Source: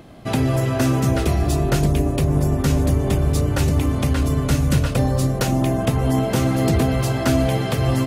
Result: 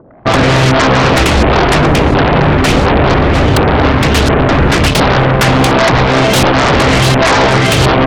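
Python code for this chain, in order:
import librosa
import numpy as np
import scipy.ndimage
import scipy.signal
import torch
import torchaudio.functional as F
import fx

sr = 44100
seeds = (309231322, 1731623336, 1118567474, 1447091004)

y = fx.filter_lfo_lowpass(x, sr, shape='saw_up', hz=1.4, low_hz=460.0, high_hz=4400.0, q=2.8)
y = fx.fold_sine(y, sr, drive_db=14, ceiling_db=-4.0)
y = fx.cheby_harmonics(y, sr, harmonics=(3,), levels_db=(-8,), full_scale_db=-3.5)
y = F.gain(torch.from_numpy(y), -1.0).numpy()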